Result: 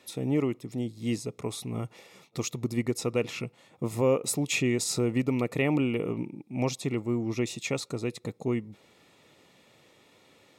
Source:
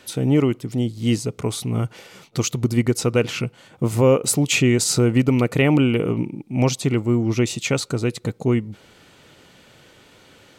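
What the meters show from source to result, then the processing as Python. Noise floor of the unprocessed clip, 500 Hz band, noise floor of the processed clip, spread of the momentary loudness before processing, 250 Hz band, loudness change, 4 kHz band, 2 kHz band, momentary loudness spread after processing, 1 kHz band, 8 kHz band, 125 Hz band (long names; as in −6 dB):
−52 dBFS, −8.5 dB, −61 dBFS, 9 LU, −9.0 dB, −9.5 dB, −10.0 dB, −8.5 dB, 10 LU, −8.5 dB, −9.5 dB, −12.0 dB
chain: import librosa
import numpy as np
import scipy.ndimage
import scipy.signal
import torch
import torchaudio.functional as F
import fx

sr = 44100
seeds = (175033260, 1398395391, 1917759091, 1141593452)

y = fx.notch_comb(x, sr, f0_hz=1500.0)
y = y * 10.0 ** (-8.0 / 20.0)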